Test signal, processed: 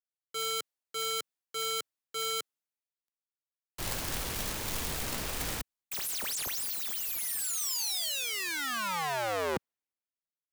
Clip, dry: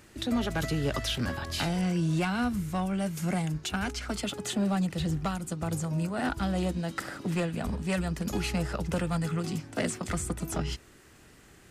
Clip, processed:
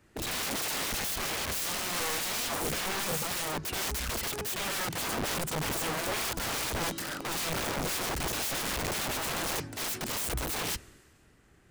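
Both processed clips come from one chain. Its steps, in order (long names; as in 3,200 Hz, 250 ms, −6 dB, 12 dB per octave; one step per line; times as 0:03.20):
wrap-around overflow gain 33 dB
multiband upward and downward expander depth 70%
level +5.5 dB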